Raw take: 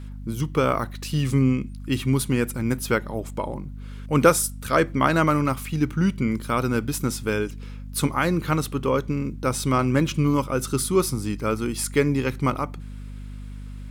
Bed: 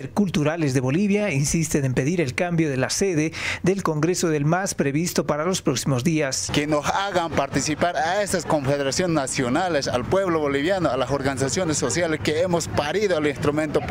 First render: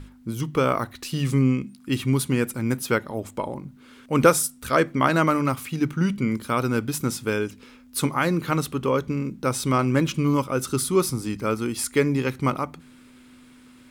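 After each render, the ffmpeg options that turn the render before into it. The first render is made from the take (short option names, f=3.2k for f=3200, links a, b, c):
-af "bandreject=f=50:t=h:w=6,bandreject=f=100:t=h:w=6,bandreject=f=150:t=h:w=6,bandreject=f=200:t=h:w=6"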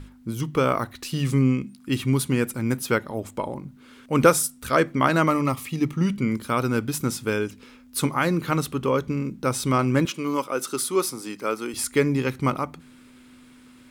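-filter_complex "[0:a]asettb=1/sr,asplit=3[a][b][c];[a]atrim=end=5.284[d];[b]atrim=start=5.28:end=6.07,asetpts=PTS-STARTPTS,afade=t=in:d=0.004:c=qsin,afade=t=out:st=0.786:d=0.004:c=qsin,asuperstop=centerf=1500:order=4:qfactor=5.5[e];[c]atrim=start=6.066[f];[d][e]acrossfade=d=0.004:c1=hsin:c2=qsin[g];[g][f]acrossfade=d=0.004:c1=qsin:c2=hsin,asettb=1/sr,asplit=3[h][i][j];[h]atrim=end=10.054[k];[i]atrim=start=10.05:end=11.74,asetpts=PTS-STARTPTS,afade=t=in:d=0.004:c=qsin,afade=t=out:st=1.686:d=0.004:c=qsin,highpass=340[l];[j]atrim=start=11.736[m];[k][l]acrossfade=d=0.004:c1=hsin:c2=qsin[n];[n][m]acrossfade=d=0.004:c1=qsin:c2=hsin"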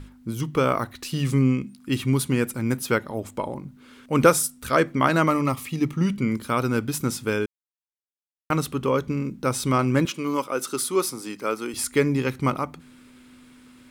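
-filter_complex "[0:a]asplit=3[a][b][c];[a]atrim=end=7.46,asetpts=PTS-STARTPTS,afade=t=out:st=7.456:d=0.004:c=hsin[d];[b]atrim=start=7.46:end=8.5,asetpts=PTS-STARTPTS,volume=0[e];[c]atrim=start=8.5,asetpts=PTS-STARTPTS,afade=t=in:d=0.004:c=hsin[f];[d][e][f]concat=n=3:v=0:a=1"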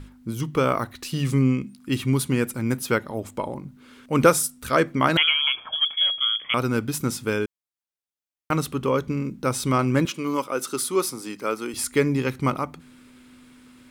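-filter_complex "[0:a]asettb=1/sr,asplit=3[a][b][c];[a]atrim=end=5.174[d];[b]atrim=start=5.17:end=6.54,asetpts=PTS-STARTPTS,afade=t=in:d=0.004:c=qsin,afade=t=out:st=1.366:d=0.004:c=qsin,lowpass=f=3k:t=q:w=0.5098,lowpass=f=3k:t=q:w=0.6013,lowpass=f=3k:t=q:w=0.9,lowpass=f=3k:t=q:w=2.563,afreqshift=-3500[e];[c]atrim=start=6.536[f];[d][e]acrossfade=d=0.004:c1=hsin:c2=qsin[g];[g][f]acrossfade=d=0.004:c1=qsin:c2=hsin"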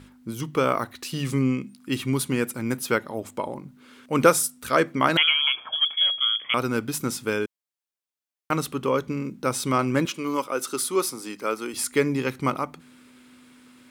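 -af "highpass=f=200:p=1"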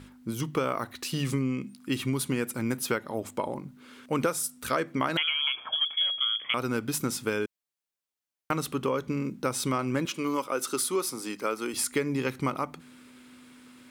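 -af "acompressor=threshold=-24dB:ratio=6"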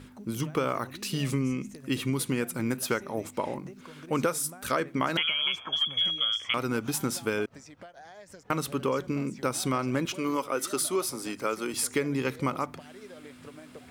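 -filter_complex "[1:a]volume=-26.5dB[a];[0:a][a]amix=inputs=2:normalize=0"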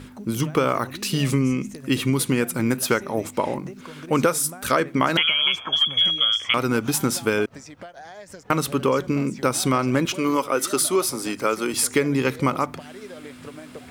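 -af "volume=7.5dB"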